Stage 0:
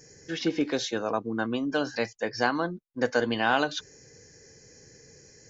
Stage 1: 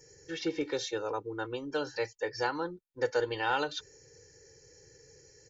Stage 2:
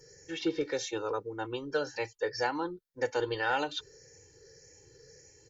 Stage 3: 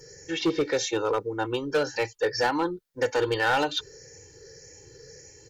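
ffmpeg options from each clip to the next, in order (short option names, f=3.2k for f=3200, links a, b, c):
-af "aecho=1:1:2.2:0.99,volume=-8dB"
-af "afftfilt=real='re*pow(10,7/40*sin(2*PI*(0.61*log(max(b,1)*sr/1024/100)/log(2)-(1.8)*(pts-256)/sr)))':imag='im*pow(10,7/40*sin(2*PI*(0.61*log(max(b,1)*sr/1024/100)/log(2)-(1.8)*(pts-256)/sr)))':win_size=1024:overlap=0.75"
-af "volume=26.5dB,asoftclip=hard,volume=-26.5dB,volume=8dB"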